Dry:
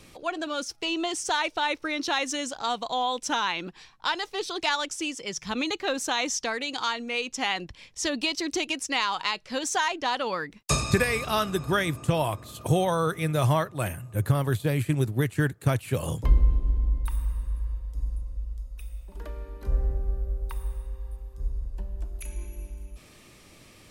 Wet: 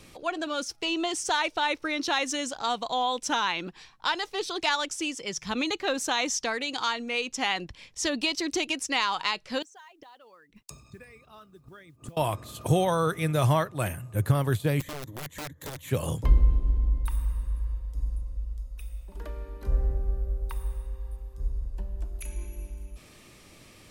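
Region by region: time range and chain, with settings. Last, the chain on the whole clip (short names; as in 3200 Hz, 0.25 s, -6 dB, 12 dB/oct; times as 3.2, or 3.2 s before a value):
9.62–12.17 formant sharpening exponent 1.5 + flipped gate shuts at -25 dBFS, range -25 dB + modulation noise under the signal 26 dB
14.8–15.9 ripple EQ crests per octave 1.1, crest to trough 13 dB + compressor 3:1, threshold -37 dBFS + wrapped overs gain 31.5 dB
whole clip: dry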